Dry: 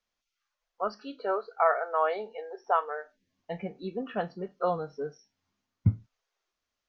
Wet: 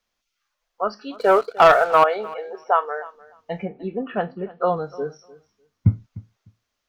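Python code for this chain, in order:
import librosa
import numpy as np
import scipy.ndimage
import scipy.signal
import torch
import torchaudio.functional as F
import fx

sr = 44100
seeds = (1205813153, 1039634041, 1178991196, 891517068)

p1 = fx.leveller(x, sr, passes=2, at=(1.14, 2.04))
p2 = fx.lowpass(p1, sr, hz=fx.line((3.65, 2500.0), (4.75, 3800.0)), slope=24, at=(3.65, 4.75), fade=0.02)
p3 = p2 + fx.echo_feedback(p2, sr, ms=301, feedback_pct=16, wet_db=-20, dry=0)
y = p3 * 10.0 ** (7.0 / 20.0)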